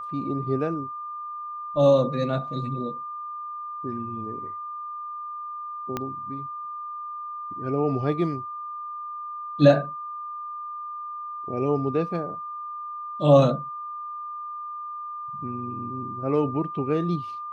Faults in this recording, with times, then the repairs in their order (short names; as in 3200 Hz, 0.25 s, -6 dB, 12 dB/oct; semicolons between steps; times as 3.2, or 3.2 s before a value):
tone 1200 Hz -32 dBFS
5.97 pop -14 dBFS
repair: de-click; notch 1200 Hz, Q 30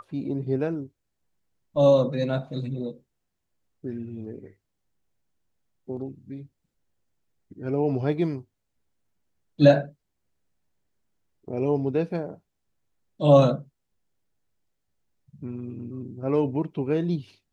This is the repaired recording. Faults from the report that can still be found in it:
5.97 pop